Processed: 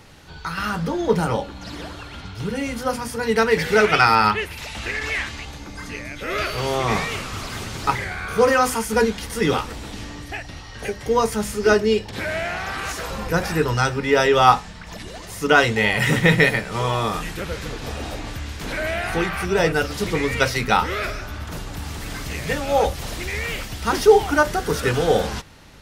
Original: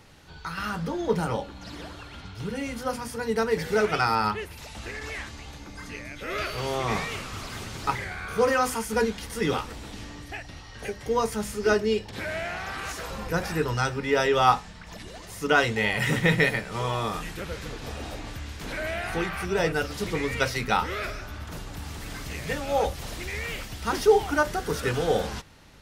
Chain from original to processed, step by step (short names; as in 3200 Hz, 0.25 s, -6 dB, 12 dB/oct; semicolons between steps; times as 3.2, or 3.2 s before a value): 3.23–5.45 bell 2400 Hz +6.5 dB 1.6 oct; gain +6 dB